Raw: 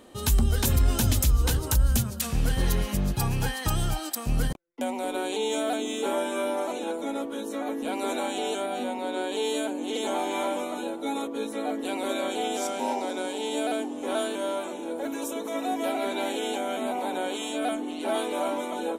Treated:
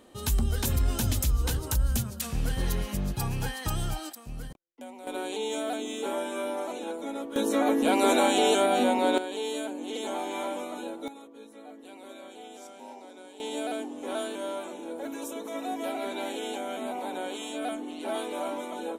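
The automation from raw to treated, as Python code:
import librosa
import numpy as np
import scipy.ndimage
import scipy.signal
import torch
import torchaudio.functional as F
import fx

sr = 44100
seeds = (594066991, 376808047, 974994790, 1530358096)

y = fx.gain(x, sr, db=fx.steps((0.0, -4.0), (4.13, -13.5), (5.07, -4.0), (7.36, 7.0), (9.18, -4.5), (11.08, -16.5), (13.4, -4.5)))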